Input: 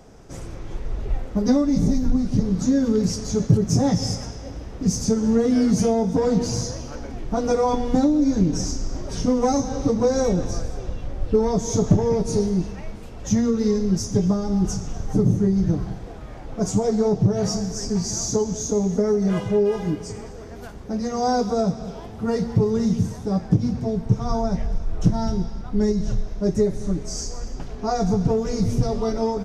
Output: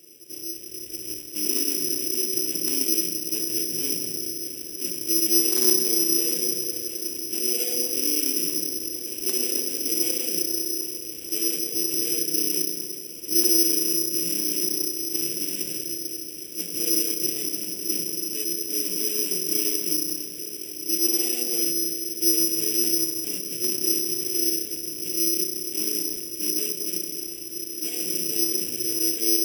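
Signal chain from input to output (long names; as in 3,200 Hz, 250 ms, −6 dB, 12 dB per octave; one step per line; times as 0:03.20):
each half-wave held at its own peak
in parallel at −1 dB: downward compressor 8 to 1, threshold −24 dBFS, peak gain reduction 16 dB
on the sum: brickwall limiter −13 dBFS, peak gain reduction 9.5 dB
pitch-shifted copies added +7 semitones −7 dB
pair of resonant band-passes 980 Hz, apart 2.9 octaves
wrap-around overflow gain 16 dB
feedback delay with all-pass diffusion 1,330 ms, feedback 73%, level −16 dB
convolution reverb RT60 1.8 s, pre-delay 3 ms, DRR 1.5 dB
bad sample-rate conversion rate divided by 8×, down filtered, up zero stuff
level −9.5 dB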